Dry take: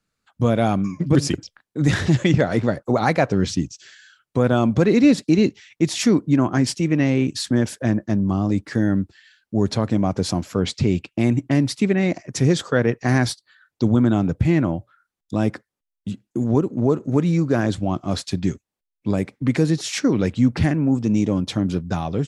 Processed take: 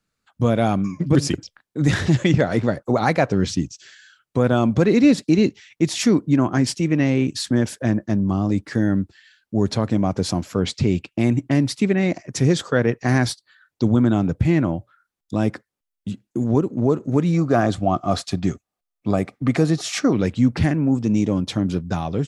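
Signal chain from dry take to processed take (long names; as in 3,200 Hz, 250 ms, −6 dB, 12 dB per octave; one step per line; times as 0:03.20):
0:17.34–0:20.13: hollow resonant body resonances 710/1,200 Hz, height 11 dB, ringing for 25 ms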